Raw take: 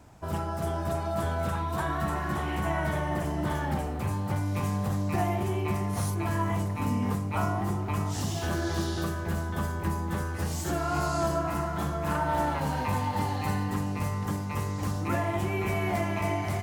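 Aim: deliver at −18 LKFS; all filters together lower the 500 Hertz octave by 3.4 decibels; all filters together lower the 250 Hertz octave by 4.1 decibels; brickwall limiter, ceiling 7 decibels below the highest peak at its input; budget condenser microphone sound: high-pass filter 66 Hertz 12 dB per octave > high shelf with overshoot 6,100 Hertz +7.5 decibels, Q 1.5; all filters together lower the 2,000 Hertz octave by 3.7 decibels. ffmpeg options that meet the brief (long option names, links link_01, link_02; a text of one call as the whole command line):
ffmpeg -i in.wav -af "equalizer=frequency=250:width_type=o:gain=-5,equalizer=frequency=500:width_type=o:gain=-3.5,equalizer=frequency=2000:width_type=o:gain=-4,alimiter=limit=-24dB:level=0:latency=1,highpass=66,highshelf=frequency=6100:width_type=q:width=1.5:gain=7.5,volume=15dB" out.wav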